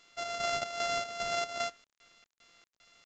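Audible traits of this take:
a buzz of ramps at a fixed pitch in blocks of 64 samples
chopped level 2.5 Hz, depth 60%, duty 60%
a quantiser's noise floor 10 bits, dither none
mu-law

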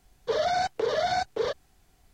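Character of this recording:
background noise floor −64 dBFS
spectral slope −3.0 dB per octave

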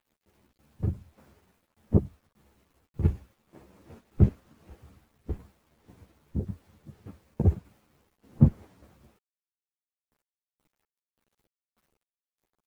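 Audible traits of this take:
tremolo saw down 1.7 Hz, depth 75%
a quantiser's noise floor 12 bits, dither none
a shimmering, thickened sound

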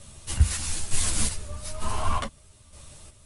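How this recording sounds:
chopped level 1.1 Hz, depth 60%, duty 40%
a shimmering, thickened sound

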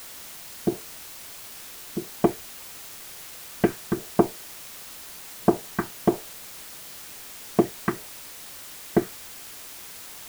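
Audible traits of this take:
phaser sweep stages 2, 1.5 Hz, lowest notch 530–1,800 Hz
a quantiser's noise floor 8 bits, dither triangular

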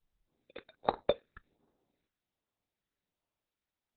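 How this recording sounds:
sample-and-hold tremolo
aliases and images of a low sample rate 3,000 Hz, jitter 0%
phaser sweep stages 2, 1.3 Hz, lowest notch 800–2,300 Hz
Opus

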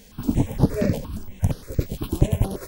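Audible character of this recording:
notches that jump at a steady rate 8.6 Hz 330–7,600 Hz

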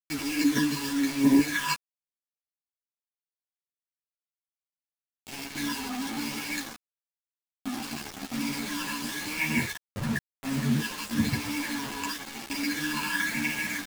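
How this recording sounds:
tremolo saw down 0.72 Hz, depth 60%
phaser sweep stages 12, 0.98 Hz, lowest notch 630–1,300 Hz
a quantiser's noise floor 6 bits, dither none
a shimmering, thickened sound

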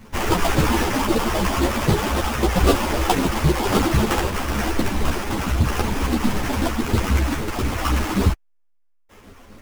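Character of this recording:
phaser sweep stages 6, 3.8 Hz, lowest notch 110–3,400 Hz
aliases and images of a low sample rate 4,100 Hz, jitter 20%
a shimmering, thickened sound

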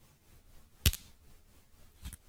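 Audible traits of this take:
a quantiser's noise floor 12 bits, dither none
tremolo triangle 4 Hz, depth 65%
a shimmering, thickened sound

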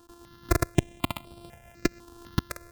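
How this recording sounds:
a buzz of ramps at a fixed pitch in blocks of 128 samples
notches that jump at a steady rate 4 Hz 590–6,500 Hz

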